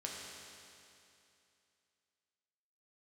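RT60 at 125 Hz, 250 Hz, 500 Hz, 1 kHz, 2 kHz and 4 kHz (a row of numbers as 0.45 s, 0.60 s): 2.7 s, 2.7 s, 2.7 s, 2.7 s, 2.7 s, 2.7 s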